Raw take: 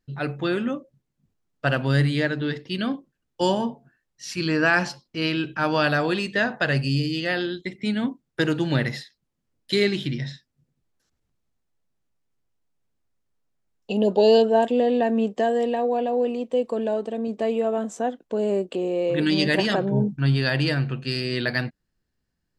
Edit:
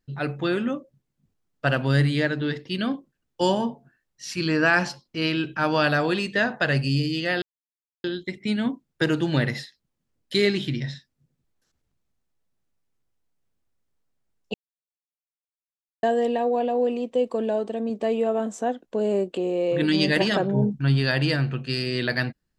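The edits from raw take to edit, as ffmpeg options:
ffmpeg -i in.wav -filter_complex "[0:a]asplit=4[link_01][link_02][link_03][link_04];[link_01]atrim=end=7.42,asetpts=PTS-STARTPTS,afade=type=out:start_time=7.416:duration=0.004:curve=hsin,apad=pad_dur=0.62[link_05];[link_02]atrim=start=7.42:end=13.92,asetpts=PTS-STARTPTS,afade=type=in:duration=0.004:curve=hsin,afade=type=out:start_time=6.496:duration=0.004:curve=hsin[link_06];[link_03]atrim=start=13.92:end=15.41,asetpts=PTS-STARTPTS,volume=0[link_07];[link_04]atrim=start=15.41,asetpts=PTS-STARTPTS,afade=type=in:duration=0.004:curve=hsin[link_08];[link_05][link_06][link_07][link_08]concat=n=4:v=0:a=1" out.wav

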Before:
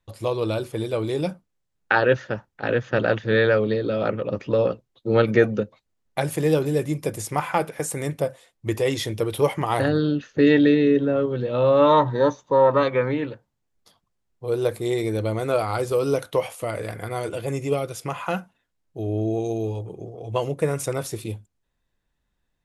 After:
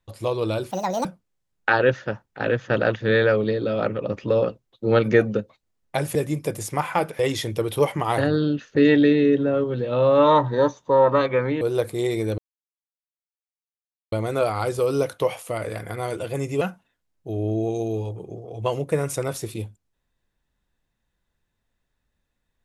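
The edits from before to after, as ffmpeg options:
ffmpeg -i in.wav -filter_complex "[0:a]asplit=8[link_01][link_02][link_03][link_04][link_05][link_06][link_07][link_08];[link_01]atrim=end=0.714[link_09];[link_02]atrim=start=0.71:end=1.28,asetpts=PTS-STARTPTS,asetrate=73647,aresample=44100,atrim=end_sample=15052,asetpts=PTS-STARTPTS[link_10];[link_03]atrim=start=1.276:end=6.382[link_11];[link_04]atrim=start=6.738:end=7.782[link_12];[link_05]atrim=start=8.808:end=13.232[link_13];[link_06]atrim=start=14.478:end=15.25,asetpts=PTS-STARTPTS,afade=type=out:start_time=0.768:duration=0.004:curve=hsin,apad=pad_dur=1.74[link_14];[link_07]atrim=start=15.25:end=17.742,asetpts=PTS-STARTPTS,afade=type=in:duration=0.004:curve=hsin[link_15];[link_08]atrim=start=18.308[link_16];[link_09][link_10]acrossfade=duration=0.004:curve1=hsin:curve2=hsin[link_17];[link_17][link_11]acrossfade=duration=0.004:curve1=hsin:curve2=hsin[link_18];[link_18][link_12]acrossfade=duration=0.004:curve1=hsin:curve2=hsin[link_19];[link_19][link_13]acrossfade=duration=0.004:curve1=hsin:curve2=hsin[link_20];[link_14][link_15]concat=n=2:v=0:a=1[link_21];[link_20][link_21]acrossfade=duration=0.004:curve1=hsin:curve2=hsin[link_22];[link_22][link_16]acrossfade=duration=0.004:curve1=hsin:curve2=hsin" out.wav

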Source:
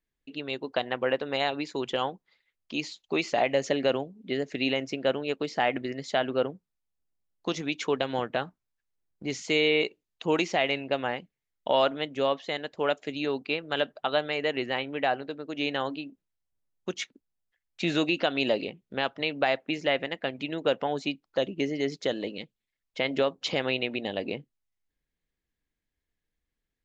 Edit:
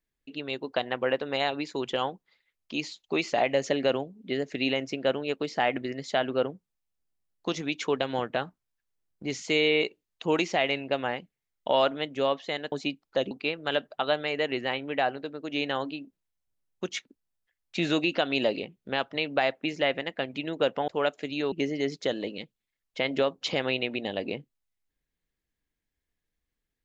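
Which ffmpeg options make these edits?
ffmpeg -i in.wav -filter_complex "[0:a]asplit=5[link_01][link_02][link_03][link_04][link_05];[link_01]atrim=end=12.722[link_06];[link_02]atrim=start=20.928:end=21.522[link_07];[link_03]atrim=start=13.358:end=20.932[link_08];[link_04]atrim=start=12.718:end=13.362[link_09];[link_05]atrim=start=21.518[link_10];[link_06][link_07]acrossfade=duration=0.004:curve1=hsin:curve2=hsin[link_11];[link_11][link_08]acrossfade=duration=0.004:curve1=hsin:curve2=hsin[link_12];[link_12][link_09]acrossfade=duration=0.004:curve1=hsin:curve2=hsin[link_13];[link_13][link_10]acrossfade=duration=0.004:curve1=hsin:curve2=hsin" out.wav

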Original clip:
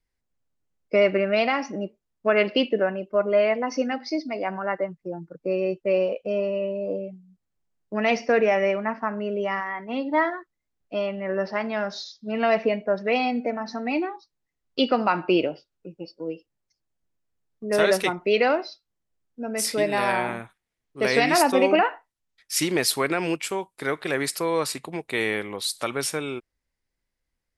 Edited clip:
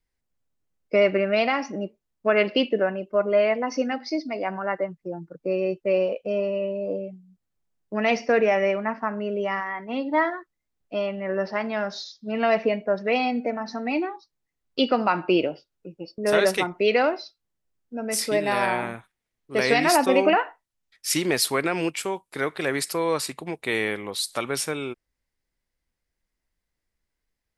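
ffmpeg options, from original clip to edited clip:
ffmpeg -i in.wav -filter_complex "[0:a]asplit=2[link_01][link_02];[link_01]atrim=end=16.182[link_03];[link_02]atrim=start=17.638[link_04];[link_03][link_04]acrossfade=duration=0.004:curve1=hsin:curve2=hsin" out.wav

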